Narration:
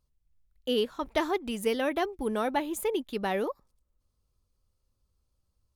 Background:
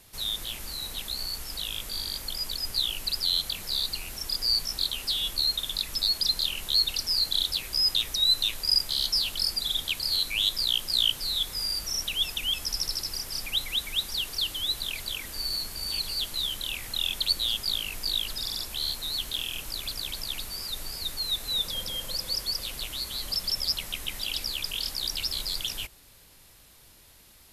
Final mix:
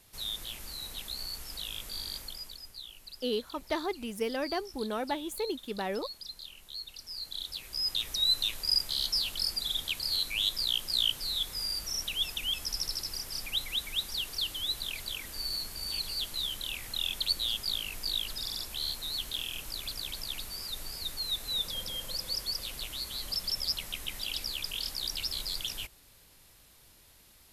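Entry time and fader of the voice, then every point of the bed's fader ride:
2.55 s, −4.5 dB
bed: 0:02.17 −5.5 dB
0:02.76 −18 dB
0:06.86 −18 dB
0:08.17 −4 dB

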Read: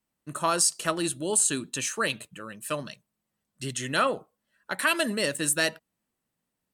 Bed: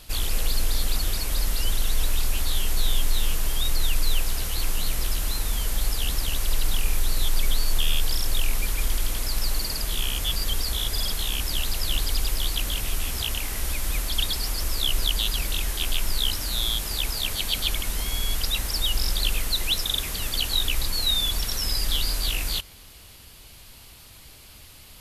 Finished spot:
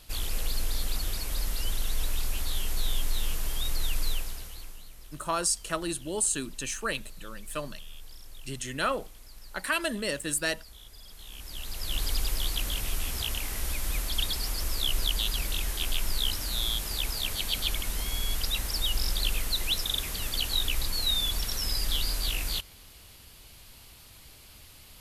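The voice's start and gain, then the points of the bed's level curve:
4.85 s, −4.0 dB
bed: 0:04.08 −6 dB
0:04.89 −23 dB
0:11.03 −23 dB
0:12.05 −4 dB

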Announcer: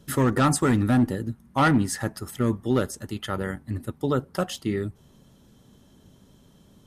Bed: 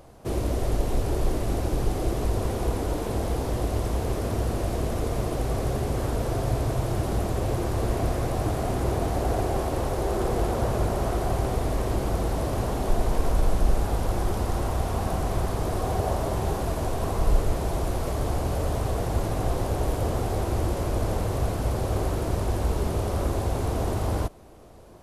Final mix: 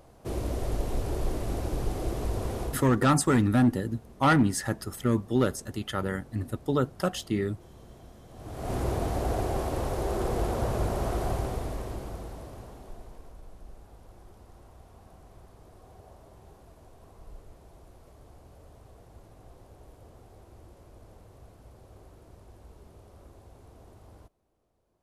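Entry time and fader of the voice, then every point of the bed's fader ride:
2.65 s, −1.5 dB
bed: 0:02.62 −5 dB
0:03.06 −25.5 dB
0:08.27 −25.5 dB
0:08.73 −3.5 dB
0:11.28 −3.5 dB
0:13.39 −26 dB

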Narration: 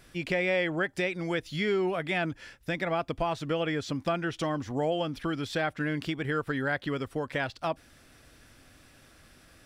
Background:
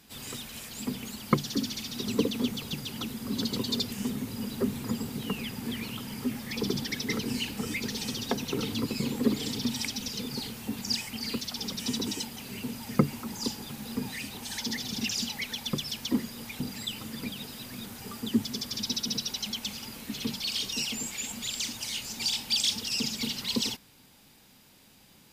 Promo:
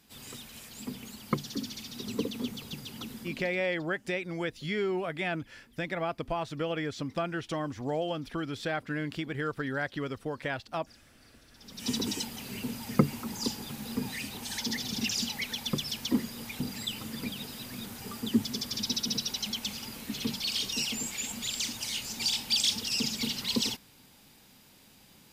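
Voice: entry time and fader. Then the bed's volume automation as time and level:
3.10 s, −3.0 dB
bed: 0:03.21 −5.5 dB
0:03.66 −29.5 dB
0:11.48 −29.5 dB
0:11.89 0 dB

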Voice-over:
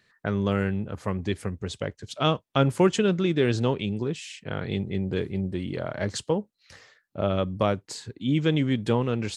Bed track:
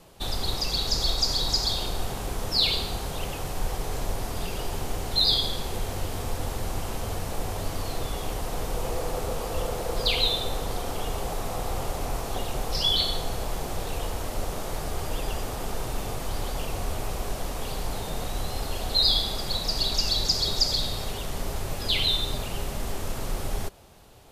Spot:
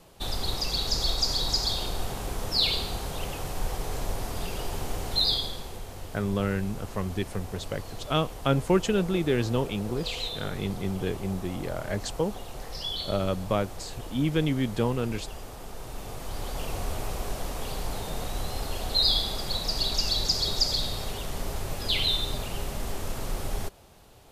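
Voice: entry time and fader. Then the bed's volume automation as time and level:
5.90 s, −2.5 dB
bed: 0:05.15 −1.5 dB
0:05.84 −9.5 dB
0:15.73 −9.5 dB
0:16.70 −1.5 dB

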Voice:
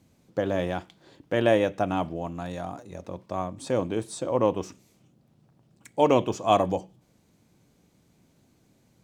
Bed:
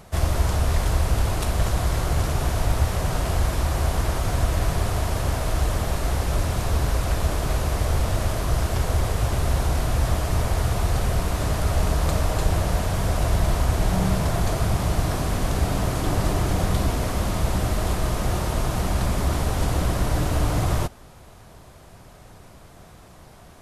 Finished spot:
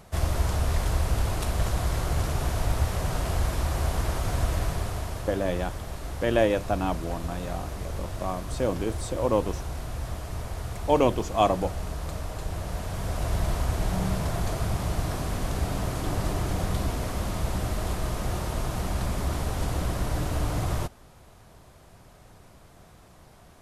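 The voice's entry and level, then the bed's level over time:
4.90 s, −1.0 dB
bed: 0:04.53 −4 dB
0:05.44 −11.5 dB
0:12.44 −11.5 dB
0:13.39 −5.5 dB

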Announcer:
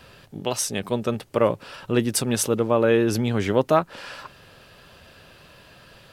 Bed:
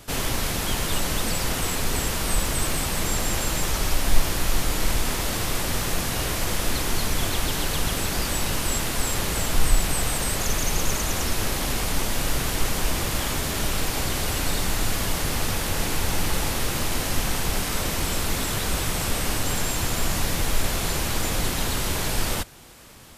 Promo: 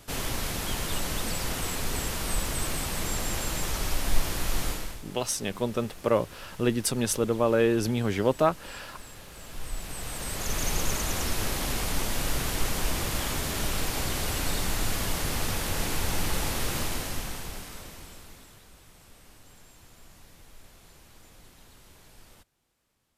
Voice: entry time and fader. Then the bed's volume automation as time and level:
4.70 s, −4.0 dB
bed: 0:04.69 −5.5 dB
0:05.04 −21.5 dB
0:09.31 −21.5 dB
0:10.64 −4 dB
0:16.80 −4 dB
0:18.71 −28.5 dB

